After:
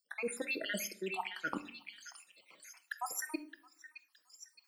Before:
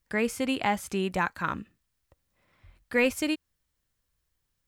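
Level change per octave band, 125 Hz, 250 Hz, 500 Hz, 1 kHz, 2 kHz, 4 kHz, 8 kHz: -16.5 dB, -14.5 dB, -12.5 dB, -11.5 dB, -9.0 dB, -7.5 dB, -1.5 dB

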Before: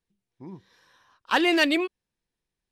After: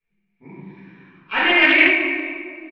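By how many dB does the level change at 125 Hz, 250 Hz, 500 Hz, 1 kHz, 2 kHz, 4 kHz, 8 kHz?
no reading, +2.5 dB, +2.5 dB, +4.0 dB, +12.5 dB, +5.5 dB, under -15 dB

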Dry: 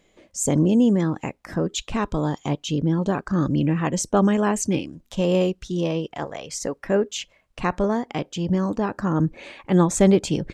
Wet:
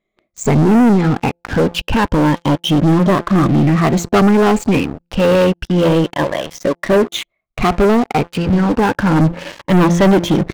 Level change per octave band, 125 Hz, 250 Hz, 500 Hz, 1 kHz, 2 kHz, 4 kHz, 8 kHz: +9.0 dB, +8.5 dB, +8.5 dB, +11.0 dB, +12.0 dB, +10.0 dB, -1.0 dB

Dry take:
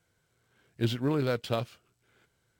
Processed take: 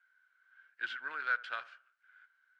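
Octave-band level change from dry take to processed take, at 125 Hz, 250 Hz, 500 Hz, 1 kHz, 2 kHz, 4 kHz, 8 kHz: under -40 dB, under -30 dB, -24.0 dB, -1.0 dB, +8.5 dB, -9.0 dB, under -15 dB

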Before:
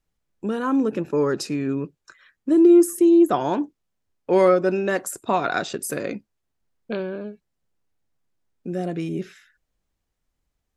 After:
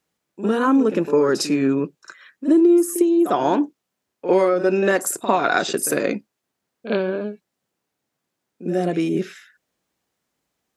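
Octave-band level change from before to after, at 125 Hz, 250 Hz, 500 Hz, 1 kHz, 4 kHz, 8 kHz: +1.0 dB, +1.0 dB, +2.0 dB, +3.5 dB, +6.0 dB, +6.0 dB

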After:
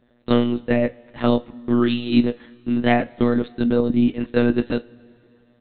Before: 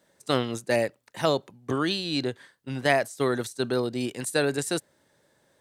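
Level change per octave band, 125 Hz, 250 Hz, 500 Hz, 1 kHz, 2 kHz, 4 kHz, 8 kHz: +6.5 dB, +12.0 dB, +4.0 dB, +3.0 dB, +0.5 dB, -2.0 dB, under -40 dB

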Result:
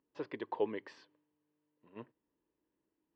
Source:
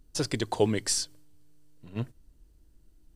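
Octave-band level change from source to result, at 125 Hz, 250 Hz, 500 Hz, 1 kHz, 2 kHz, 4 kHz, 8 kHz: -25.5 dB, -13.0 dB, -8.5 dB, -7.5 dB, -11.0 dB, -25.0 dB, under -40 dB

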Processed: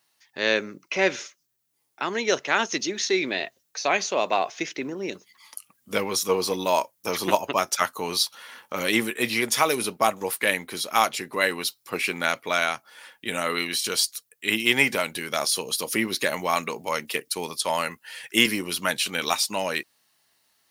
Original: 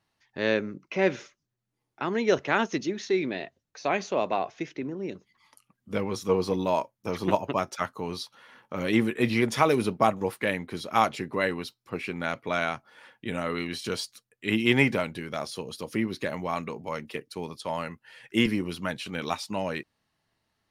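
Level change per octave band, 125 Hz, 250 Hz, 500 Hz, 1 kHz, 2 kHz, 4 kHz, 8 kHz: -6.5 dB, -2.5 dB, +1.0 dB, +3.5 dB, +6.0 dB, +10.0 dB, +15.5 dB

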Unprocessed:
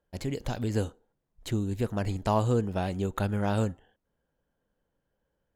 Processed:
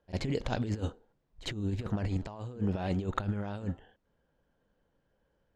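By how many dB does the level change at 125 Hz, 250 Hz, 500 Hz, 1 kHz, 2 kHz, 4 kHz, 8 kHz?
-4.0 dB, -3.5 dB, -7.5 dB, -7.5 dB, -3.0 dB, -0.5 dB, -7.0 dB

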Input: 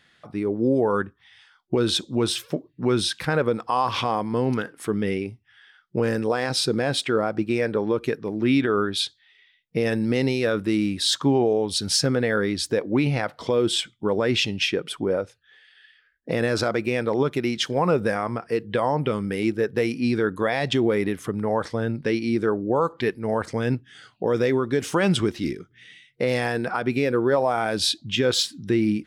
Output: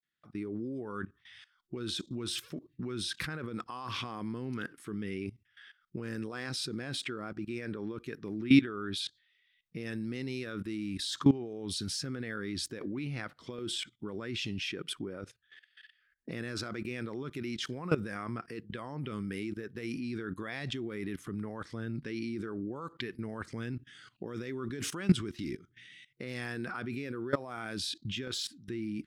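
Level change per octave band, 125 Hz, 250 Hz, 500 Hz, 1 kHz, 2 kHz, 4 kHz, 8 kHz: -10.0 dB, -10.0 dB, -18.0 dB, -17.0 dB, -11.5 dB, -11.5 dB, -11.5 dB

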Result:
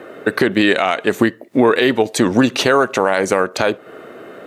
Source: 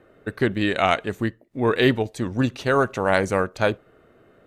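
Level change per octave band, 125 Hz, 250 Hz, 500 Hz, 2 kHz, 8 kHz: -0.5 dB, +8.0 dB, +6.5 dB, +6.5 dB, +14.0 dB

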